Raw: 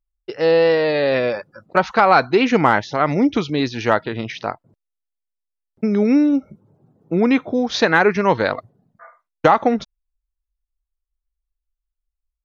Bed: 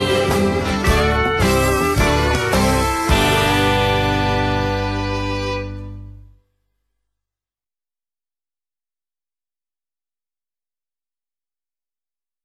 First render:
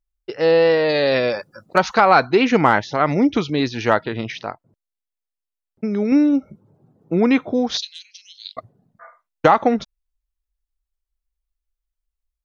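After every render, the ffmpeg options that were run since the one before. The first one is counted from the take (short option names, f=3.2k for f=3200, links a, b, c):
-filter_complex "[0:a]asettb=1/sr,asplit=3[a][b][c];[a]atrim=end=0.894[d];[b]atrim=start=0.89:end=1.98,asetpts=PTS-STARTPTS,afade=t=in:d=0.004:c=qsin,afade=t=out:st=1.086:d=0.004:c=qsin,bass=f=250:g=0,treble=f=4k:g=11[e];[c]atrim=start=1.976[f];[d][e]acrossfade=d=0.004:c1=hsin:c2=qsin[g];[g][f]acrossfade=d=0.004:c1=qsin:c2=hsin,asettb=1/sr,asplit=3[h][i][j];[h]atrim=end=7.774[k];[i]atrim=start=7.77:end=8.57,asetpts=PTS-STARTPTS,afade=t=in:d=0.004:c=qsin,afade=t=out:st=0.796:d=0.004:c=qsin,asuperpass=centerf=5600:order=12:qfactor=0.9[l];[j]atrim=start=8.566[m];[k][l]acrossfade=d=0.004:c1=hsin:c2=qsin[n];[n][m]acrossfade=d=0.004:c1=qsin:c2=hsin,asplit=3[o][p][q];[o]atrim=end=4.422[r];[p]atrim=start=4.418:end=6.122,asetpts=PTS-STARTPTS,volume=-4dB[s];[q]atrim=start=6.118[t];[r][s]acrossfade=d=0.004:c1=hsin:c2=hsin[u];[u][t]acrossfade=d=0.004:c1=hsin:c2=hsin"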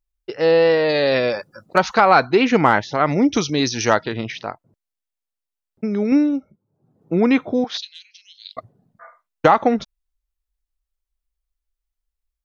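-filter_complex "[0:a]asettb=1/sr,asplit=3[a][b][c];[a]atrim=end=3.324[d];[b]atrim=start=3.32:end=4.14,asetpts=PTS-STARTPTS,afade=t=in:d=0.004:c=qsin,afade=t=out:st=0.816:d=0.004:c=qsin,lowpass=f=5.9k:t=q:w=7.3[e];[c]atrim=start=4.136[f];[d][e]acrossfade=d=0.004:c1=hsin:c2=qsin[g];[g][f]acrossfade=d=0.004:c1=qsin:c2=hsin,asettb=1/sr,asplit=3[h][i][j];[h]atrim=end=7.644[k];[i]atrim=start=7.64:end=8.5,asetpts=PTS-STARTPTS,afade=t=in:d=0.004:c=qsin,afade=t=out:st=0.856:d=0.004:c=qsin,bandpass=f=1.9k:t=q:w=0.68[l];[j]atrim=start=8.496[m];[k][l]acrossfade=d=0.004:c1=hsin:c2=qsin[n];[n][m]acrossfade=d=0.004:c1=qsin:c2=hsin,asplit=3[o][p][q];[o]atrim=end=6.57,asetpts=PTS-STARTPTS,afade=t=out:st=6.14:d=0.43:silence=0.125893[r];[p]atrim=start=6.57:end=6.7,asetpts=PTS-STARTPTS,volume=-18dB[s];[q]atrim=start=6.7,asetpts=PTS-STARTPTS,afade=t=in:d=0.43:silence=0.125893[t];[r][s][t]concat=n=3:v=0:a=1"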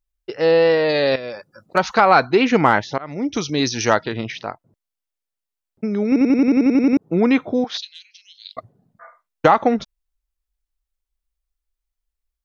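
-filter_complex "[0:a]asplit=13[a][b][c][d][e][f][g][h][i][j][k][l][m];[a]atrim=end=1.16,asetpts=PTS-STARTPTS,afade=t=out:st=1.156:d=0.004:c=hsin:silence=0.199526[n];[b]atrim=start=1.16:end=2.98,asetpts=PTS-STARTPTS,afade=t=in:d=0.79:silence=0.199526,afade=t=out:st=1.816:d=0.004:c=hsin:silence=0.0749894[o];[c]atrim=start=2.98:end=6.162,asetpts=PTS-STARTPTS,afade=t=in:d=0.64:silence=0.0749894[p];[d]atrim=start=6.068:end=6.162[q];[e]atrim=start=6.068:end=6.162[r];[f]atrim=start=6.068:end=6.162[s];[g]atrim=start=6.068:end=6.162[t];[h]atrim=start=6.068:end=6.162[u];[i]atrim=start=6.068:end=6.162[v];[j]atrim=start=6.068:end=6.162[w];[k]atrim=start=6.068:end=6.162[x];[l]atrim=start=6.068:end=6.162[y];[m]atrim=start=6.968[z];[n][o][p]concat=n=3:v=0:a=1[aa];[aa][q]acrossfade=d=0.004:c1=hsin:c2=hsin[ab];[ab][r]acrossfade=d=0.004:c1=hsin:c2=hsin[ac];[ac][s]acrossfade=d=0.004:c1=hsin:c2=hsin[ad];[ad][t]acrossfade=d=0.004:c1=hsin:c2=hsin[ae];[ae][u]acrossfade=d=0.004:c1=hsin:c2=hsin[af];[af][v]acrossfade=d=0.004:c1=hsin:c2=hsin[ag];[ag][w]acrossfade=d=0.004:c1=hsin:c2=hsin[ah];[ah][x]acrossfade=d=0.004:c1=hsin:c2=hsin[ai];[ai][y]acrossfade=d=0.004:c1=hsin:c2=hsin[aj];[aj][z]acrossfade=d=0.004:c1=hsin:c2=hsin"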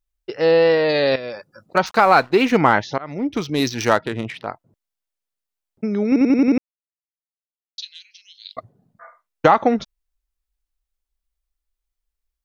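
-filter_complex "[0:a]asettb=1/sr,asplit=3[a][b][c];[a]atrim=end=1.864[d];[b]atrim=start=1.86:end=2.57,asetpts=PTS-STARTPTS,afade=t=in:d=0.004:c=qsin,afade=t=out:st=0.706:d=0.004:c=qsin,aeval=exprs='sgn(val(0))*max(abs(val(0))-0.015,0)':c=same[e];[c]atrim=start=2.566[f];[d][e]acrossfade=d=0.004:c1=hsin:c2=qsin[g];[g][f]acrossfade=d=0.004:c1=qsin:c2=hsin,asettb=1/sr,asplit=3[h][i][j];[h]atrim=end=3.184[k];[i]atrim=start=3.18:end=4.47,asetpts=PTS-STARTPTS,afade=t=in:d=0.004:c=qsin,afade=t=out:st=1.286:d=0.004:c=qsin,adynamicsmooth=sensitivity=2:basefreq=2.2k[l];[j]atrim=start=4.466[m];[k][l]acrossfade=d=0.004:c1=hsin:c2=qsin[n];[n][m]acrossfade=d=0.004:c1=qsin:c2=hsin,asplit=3[o][p][q];[o]atrim=end=6.58,asetpts=PTS-STARTPTS,afade=t=out:st=6.576:d=0.004:c=hsin[r];[p]atrim=start=6.58:end=7.78,asetpts=PTS-STARTPTS,volume=0[s];[q]atrim=start=7.78,asetpts=PTS-STARTPTS,afade=t=in:d=0.004:c=hsin[t];[r][s][t]concat=n=3:v=0:a=1"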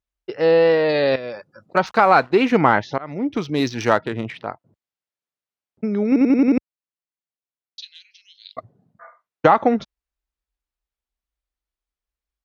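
-af "highpass=59,aemphasis=mode=reproduction:type=50kf"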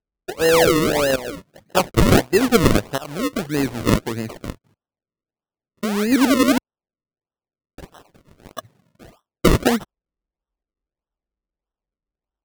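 -af "acrusher=samples=38:mix=1:aa=0.000001:lfo=1:lforange=38:lforate=1.6"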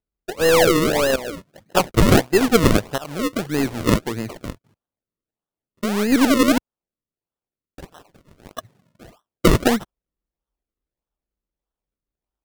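-af "aeval=exprs='0.841*(cos(1*acos(clip(val(0)/0.841,-1,1)))-cos(1*PI/2))+0.0299*(cos(8*acos(clip(val(0)/0.841,-1,1)))-cos(8*PI/2))':c=same"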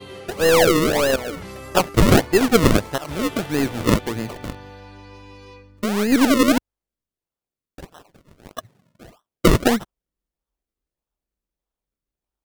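-filter_complex "[1:a]volume=-21dB[a];[0:a][a]amix=inputs=2:normalize=0"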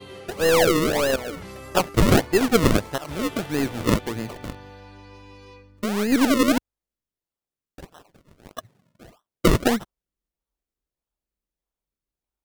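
-af "volume=-3dB"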